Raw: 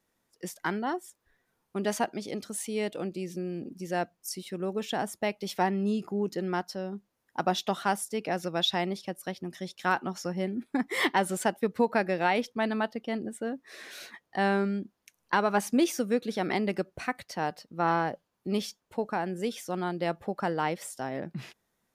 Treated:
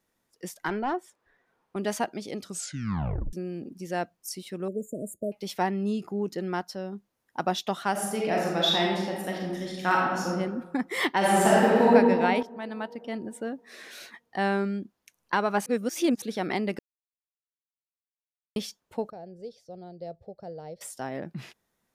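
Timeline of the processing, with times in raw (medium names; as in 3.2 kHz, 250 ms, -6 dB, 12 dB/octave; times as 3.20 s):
0.68–1.76 s: overdrive pedal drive 16 dB, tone 1 kHz, clips at -17 dBFS
2.42 s: tape stop 0.91 s
4.68–5.32 s: brick-wall FIR band-stop 650–6700 Hz
7.91–10.30 s: reverb throw, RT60 1.2 s, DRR -3 dB
11.17–11.89 s: reverb throw, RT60 2.3 s, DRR -8.5 dB
12.43–13.35 s: fade in linear, from -14 dB
15.66–16.22 s: reverse
16.79–18.56 s: mute
19.10–20.81 s: FFT filter 110 Hz 0 dB, 190 Hz -12 dB, 290 Hz -19 dB, 460 Hz -6 dB, 670 Hz -7 dB, 1 kHz -28 dB, 3.1 kHz -24 dB, 4.6 kHz -9 dB, 6.9 kHz -23 dB, 13 kHz -29 dB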